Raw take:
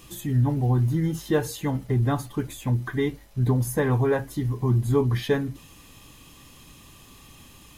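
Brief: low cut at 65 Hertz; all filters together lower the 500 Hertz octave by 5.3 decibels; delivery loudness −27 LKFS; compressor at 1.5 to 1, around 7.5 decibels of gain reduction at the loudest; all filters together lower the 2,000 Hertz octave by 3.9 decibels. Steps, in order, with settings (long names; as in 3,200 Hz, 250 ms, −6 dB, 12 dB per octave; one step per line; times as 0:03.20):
high-pass filter 65 Hz
parametric band 500 Hz −6.5 dB
parametric band 2,000 Hz −4.5 dB
downward compressor 1.5 to 1, threshold −40 dBFS
level +6 dB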